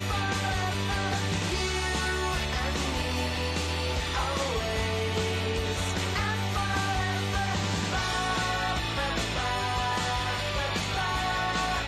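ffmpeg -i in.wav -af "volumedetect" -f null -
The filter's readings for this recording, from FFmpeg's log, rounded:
mean_volume: -28.6 dB
max_volume: -15.5 dB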